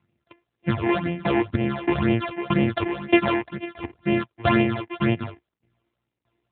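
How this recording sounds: a buzz of ramps at a fixed pitch in blocks of 128 samples; tremolo saw down 1.6 Hz, depth 95%; phasing stages 8, 2 Hz, lowest notch 160–1300 Hz; AMR-NB

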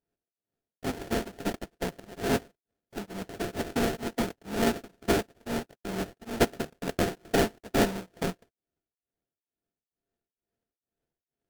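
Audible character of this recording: a buzz of ramps at a fixed pitch in blocks of 64 samples; tremolo triangle 2.2 Hz, depth 100%; aliases and images of a low sample rate 1.1 kHz, jitter 20%; Vorbis

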